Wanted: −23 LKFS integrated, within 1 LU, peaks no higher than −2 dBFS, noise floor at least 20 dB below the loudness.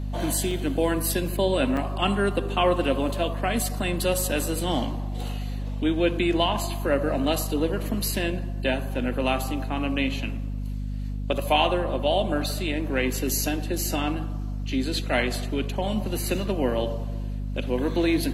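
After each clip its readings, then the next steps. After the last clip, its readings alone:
number of dropouts 3; longest dropout 2.4 ms; mains hum 50 Hz; hum harmonics up to 250 Hz; level of the hum −27 dBFS; integrated loudness −26.0 LKFS; sample peak −7.5 dBFS; target loudness −23.0 LKFS
→ repair the gap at 0:00.51/0:01.77/0:03.09, 2.4 ms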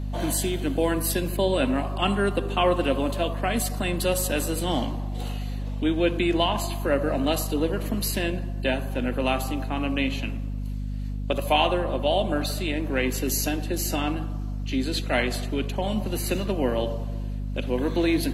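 number of dropouts 0; mains hum 50 Hz; hum harmonics up to 250 Hz; level of the hum −27 dBFS
→ mains-hum notches 50/100/150/200/250 Hz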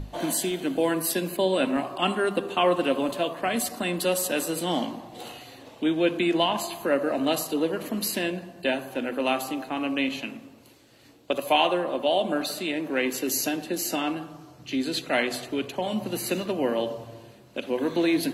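mains hum none found; integrated loudness −26.5 LKFS; sample peak −7.5 dBFS; target loudness −23.0 LKFS
→ level +3.5 dB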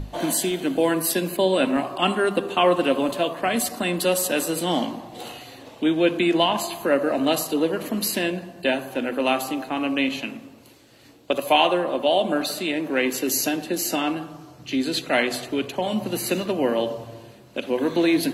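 integrated loudness −23.0 LKFS; sample peak −4.0 dBFS; background noise floor −48 dBFS

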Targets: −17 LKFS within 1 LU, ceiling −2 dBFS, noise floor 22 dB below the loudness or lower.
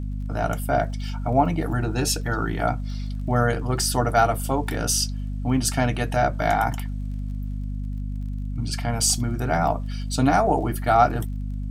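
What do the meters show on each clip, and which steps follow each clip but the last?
crackle rate 21 per second; mains hum 50 Hz; hum harmonics up to 250 Hz; level of the hum −26 dBFS; integrated loudness −24.0 LKFS; sample peak −4.0 dBFS; target loudness −17.0 LKFS
→ click removal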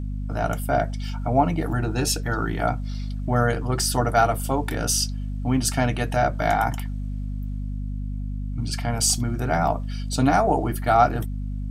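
crackle rate 0.085 per second; mains hum 50 Hz; hum harmonics up to 250 Hz; level of the hum −26 dBFS
→ mains-hum notches 50/100/150/200/250 Hz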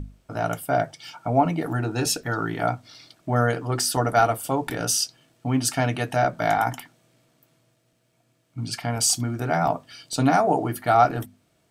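mains hum none found; integrated loudness −23.5 LKFS; sample peak −4.0 dBFS; target loudness −17.0 LKFS
→ level +6.5 dB
brickwall limiter −2 dBFS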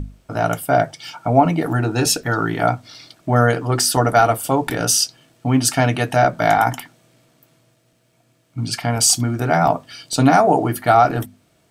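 integrated loudness −17.5 LKFS; sample peak −2.0 dBFS; background noise floor −61 dBFS

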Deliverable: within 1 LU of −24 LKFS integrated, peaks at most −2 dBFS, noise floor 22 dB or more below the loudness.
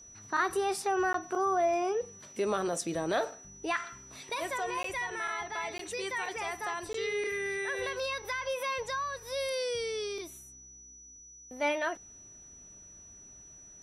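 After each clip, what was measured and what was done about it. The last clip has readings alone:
number of dropouts 4; longest dropout 13 ms; interfering tone 5,900 Hz; level of the tone −50 dBFS; integrated loudness −33.0 LKFS; sample peak −16.5 dBFS; target loudness −24.0 LKFS
→ repair the gap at 0:01.13/0:04.83/0:05.78/0:06.93, 13 ms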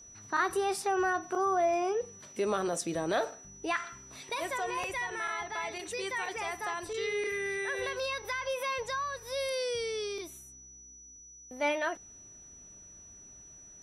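number of dropouts 0; interfering tone 5,900 Hz; level of the tone −50 dBFS
→ notch filter 5,900 Hz, Q 30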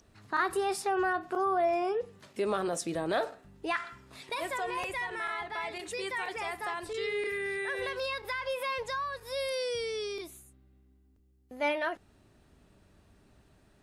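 interfering tone none found; integrated loudness −33.0 LKFS; sample peak −16.5 dBFS; target loudness −24.0 LKFS
→ level +9 dB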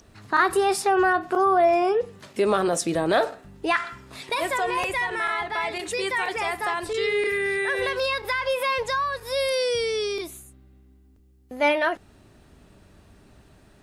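integrated loudness −24.0 LKFS; sample peak −7.5 dBFS; background noise floor −55 dBFS

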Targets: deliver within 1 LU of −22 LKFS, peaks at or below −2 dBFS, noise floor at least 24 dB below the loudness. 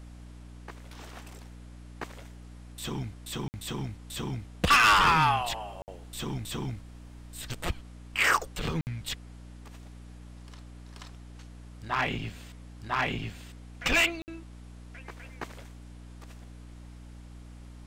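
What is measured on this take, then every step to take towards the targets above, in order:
number of dropouts 4; longest dropout 59 ms; mains hum 60 Hz; hum harmonics up to 300 Hz; level of the hum −44 dBFS; integrated loudness −28.0 LKFS; sample peak −14.0 dBFS; target loudness −22.0 LKFS
→ repair the gap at 0:03.48/0:05.82/0:08.81/0:14.22, 59 ms
hum removal 60 Hz, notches 5
level +6 dB

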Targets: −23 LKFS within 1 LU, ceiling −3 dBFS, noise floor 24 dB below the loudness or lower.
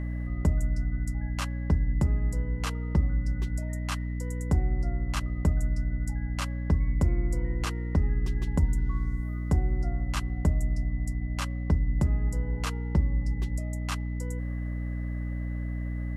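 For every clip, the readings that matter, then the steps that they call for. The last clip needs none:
mains hum 60 Hz; hum harmonics up to 300 Hz; level of the hum −29 dBFS; interfering tone 2,000 Hz; level of the tone −49 dBFS; integrated loudness −30.0 LKFS; sample peak −14.0 dBFS; target loudness −23.0 LKFS
→ mains-hum notches 60/120/180/240/300 Hz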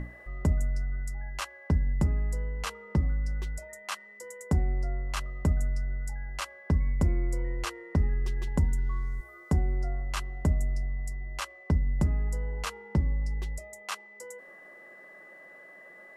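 mains hum none found; interfering tone 2,000 Hz; level of the tone −49 dBFS
→ notch filter 2,000 Hz, Q 30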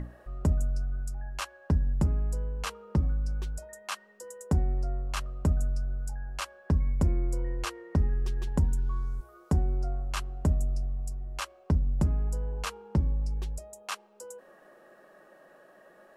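interfering tone none found; integrated loudness −31.5 LKFS; sample peak −15.5 dBFS; target loudness −23.0 LKFS
→ level +8.5 dB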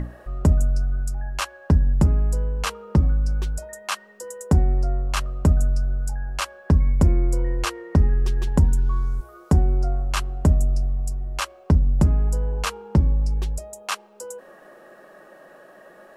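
integrated loudness −23.0 LKFS; sample peak −7.0 dBFS; background noise floor −49 dBFS

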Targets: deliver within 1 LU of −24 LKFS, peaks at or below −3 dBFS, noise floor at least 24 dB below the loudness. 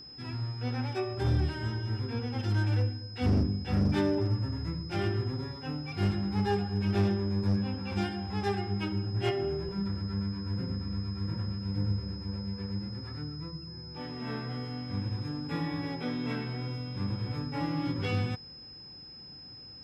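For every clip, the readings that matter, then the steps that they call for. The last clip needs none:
share of clipped samples 0.5%; peaks flattened at −21.0 dBFS; interfering tone 5,100 Hz; level of the tone −46 dBFS; integrated loudness −32.5 LKFS; sample peak −21.0 dBFS; target loudness −24.0 LKFS
→ clipped peaks rebuilt −21 dBFS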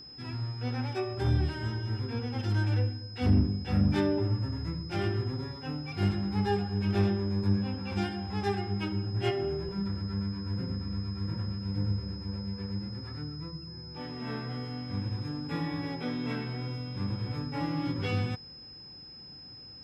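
share of clipped samples 0.0%; interfering tone 5,100 Hz; level of the tone −46 dBFS
→ notch filter 5,100 Hz, Q 30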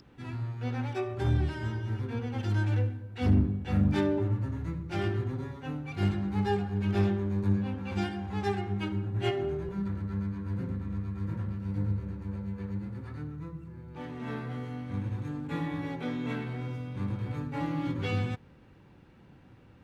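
interfering tone none found; integrated loudness −32.0 LKFS; sample peak −13.0 dBFS; target loudness −24.0 LKFS
→ level +8 dB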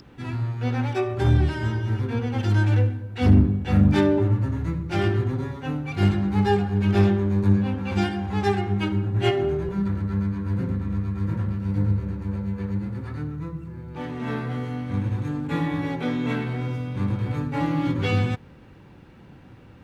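integrated loudness −24.0 LKFS; sample peak −5.0 dBFS; background noise floor −48 dBFS

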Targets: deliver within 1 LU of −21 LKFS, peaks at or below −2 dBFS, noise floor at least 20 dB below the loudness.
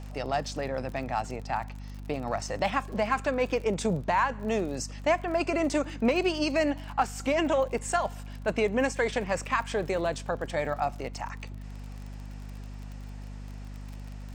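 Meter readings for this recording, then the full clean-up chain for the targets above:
crackle rate 38 per second; mains hum 50 Hz; hum harmonics up to 250 Hz; level of the hum −38 dBFS; integrated loudness −29.0 LKFS; sample peak −13.0 dBFS; target loudness −21.0 LKFS
→ click removal
hum removal 50 Hz, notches 5
level +8 dB

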